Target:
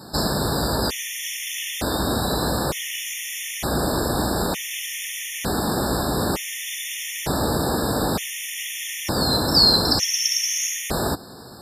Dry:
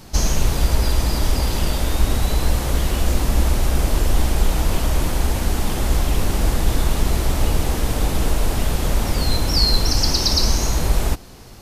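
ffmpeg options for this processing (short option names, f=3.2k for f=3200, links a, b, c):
-af "highpass=150,afftfilt=real='re*gt(sin(2*PI*0.55*pts/sr)*(1-2*mod(floor(b*sr/1024/1800),2)),0)':imag='im*gt(sin(2*PI*0.55*pts/sr)*(1-2*mod(floor(b*sr/1024/1800),2)),0)':win_size=1024:overlap=0.75,volume=4.5dB"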